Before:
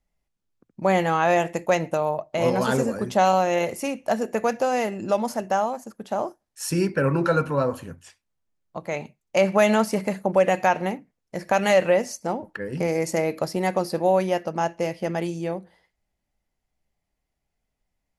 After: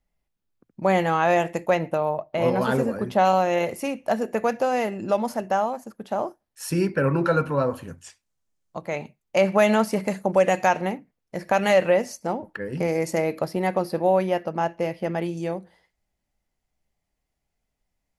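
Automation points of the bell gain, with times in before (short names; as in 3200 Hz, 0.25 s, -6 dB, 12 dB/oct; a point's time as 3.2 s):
bell 7000 Hz 1.1 oct
-3.5 dB
from 1.71 s -12.5 dB
from 3.25 s -5.5 dB
from 7.88 s +6 dB
from 8.81 s -3.5 dB
from 10.08 s +3.5 dB
from 10.81 s -4 dB
from 13.41 s -10.5 dB
from 15.37 s +1.5 dB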